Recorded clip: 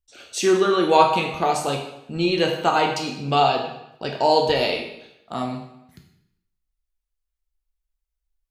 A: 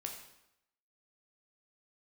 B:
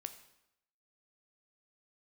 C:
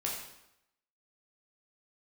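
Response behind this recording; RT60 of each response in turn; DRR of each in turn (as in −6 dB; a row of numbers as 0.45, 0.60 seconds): A; 0.85, 0.85, 0.85 seconds; 1.5, 8.5, −3.5 decibels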